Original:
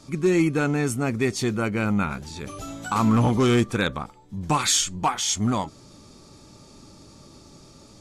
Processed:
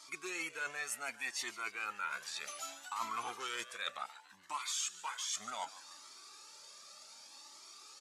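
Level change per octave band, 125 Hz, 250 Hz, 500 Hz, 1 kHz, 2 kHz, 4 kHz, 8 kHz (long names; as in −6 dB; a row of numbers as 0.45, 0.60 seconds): below −40 dB, −34.5 dB, −25.5 dB, −14.0 dB, −9.5 dB, −12.5 dB, −13.0 dB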